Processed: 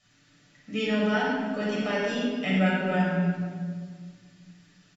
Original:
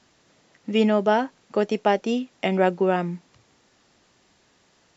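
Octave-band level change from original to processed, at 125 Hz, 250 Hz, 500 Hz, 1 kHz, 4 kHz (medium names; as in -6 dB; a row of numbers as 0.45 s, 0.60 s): +3.0 dB, -1.0 dB, -7.0 dB, -7.0 dB, 0.0 dB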